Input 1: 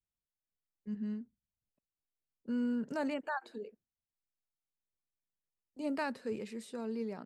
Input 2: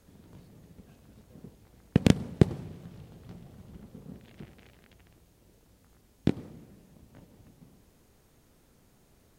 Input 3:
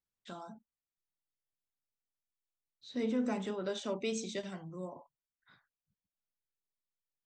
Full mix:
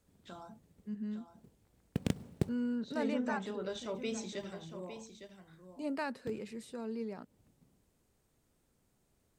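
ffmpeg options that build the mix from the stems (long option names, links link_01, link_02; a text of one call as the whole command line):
ffmpeg -i stem1.wav -i stem2.wav -i stem3.wav -filter_complex "[0:a]volume=-1.5dB,asplit=2[link_01][link_02];[1:a]equalizer=frequency=8200:width_type=o:width=0.35:gain=5.5,acrusher=bits=6:mode=log:mix=0:aa=0.000001,volume=-12.5dB[link_03];[2:a]volume=-3dB,asplit=2[link_04][link_05];[link_05]volume=-10dB[link_06];[link_02]apad=whole_len=413994[link_07];[link_03][link_07]sidechaincompress=threshold=-43dB:ratio=8:attack=16:release=480[link_08];[link_06]aecho=0:1:858:1[link_09];[link_01][link_08][link_04][link_09]amix=inputs=4:normalize=0" out.wav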